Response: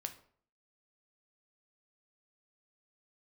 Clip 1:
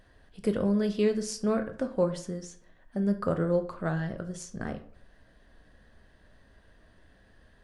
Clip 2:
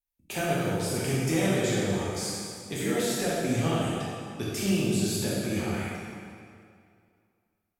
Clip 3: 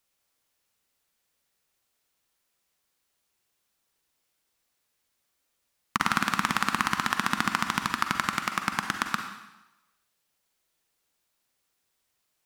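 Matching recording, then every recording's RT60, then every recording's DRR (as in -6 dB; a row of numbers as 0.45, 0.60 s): 1; 0.55, 2.3, 1.0 s; 6.5, -7.5, 5.0 dB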